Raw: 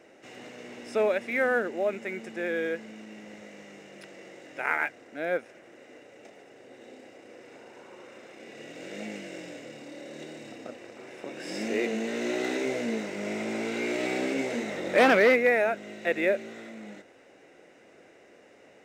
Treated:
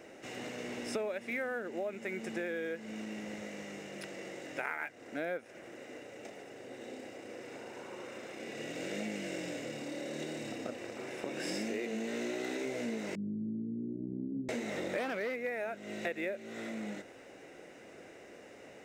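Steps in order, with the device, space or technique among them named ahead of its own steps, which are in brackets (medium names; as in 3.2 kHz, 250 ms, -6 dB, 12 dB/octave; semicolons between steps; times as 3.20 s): 13.15–14.49 s: inverse Chebyshev low-pass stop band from 1.1 kHz, stop band 70 dB; ASMR close-microphone chain (bass shelf 150 Hz +5.5 dB; compression 8:1, threshold -36 dBFS, peak gain reduction 20 dB; treble shelf 8.1 kHz +6 dB); trim +2 dB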